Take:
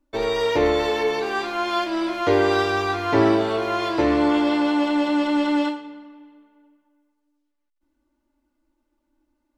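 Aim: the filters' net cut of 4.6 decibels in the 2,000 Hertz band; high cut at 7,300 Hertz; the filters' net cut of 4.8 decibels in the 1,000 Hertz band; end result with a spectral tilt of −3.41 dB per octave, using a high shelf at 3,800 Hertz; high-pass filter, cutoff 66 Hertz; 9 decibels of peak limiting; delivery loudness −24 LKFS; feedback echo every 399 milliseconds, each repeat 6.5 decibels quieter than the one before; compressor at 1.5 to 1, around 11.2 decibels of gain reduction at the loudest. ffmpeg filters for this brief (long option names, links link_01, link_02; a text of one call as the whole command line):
ffmpeg -i in.wav -af "highpass=66,lowpass=7300,equalizer=frequency=1000:width_type=o:gain=-5.5,equalizer=frequency=2000:width_type=o:gain=-5,highshelf=frequency=3800:gain=3.5,acompressor=threshold=-47dB:ratio=1.5,alimiter=level_in=4dB:limit=-24dB:level=0:latency=1,volume=-4dB,aecho=1:1:399|798|1197|1596|1995|2394:0.473|0.222|0.105|0.0491|0.0231|0.0109,volume=11dB" out.wav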